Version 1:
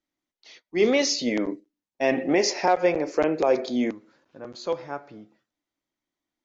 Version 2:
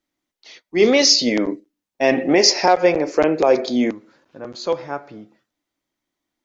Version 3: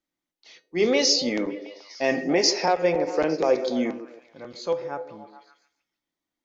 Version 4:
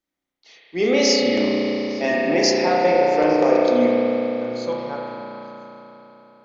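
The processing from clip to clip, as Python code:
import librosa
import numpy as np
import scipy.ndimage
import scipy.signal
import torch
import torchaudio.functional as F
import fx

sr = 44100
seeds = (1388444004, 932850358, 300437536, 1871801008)

y1 = fx.dynamic_eq(x, sr, hz=4900.0, q=2.2, threshold_db=-43.0, ratio=4.0, max_db=8)
y1 = y1 * librosa.db_to_amplitude(6.0)
y2 = fx.comb_fb(y1, sr, f0_hz=170.0, decay_s=0.26, harmonics='odd', damping=0.0, mix_pct=60)
y2 = fx.echo_stepped(y2, sr, ms=143, hz=380.0, octaves=0.7, feedback_pct=70, wet_db=-8.0)
y3 = fx.rev_spring(y2, sr, rt60_s=3.9, pass_ms=(33,), chirp_ms=50, drr_db=-4.0)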